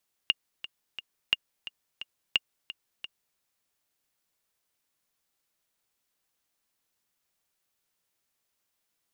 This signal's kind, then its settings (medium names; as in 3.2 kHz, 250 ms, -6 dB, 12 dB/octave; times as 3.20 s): metronome 175 bpm, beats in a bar 3, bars 3, 2.83 kHz, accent 15 dB -9 dBFS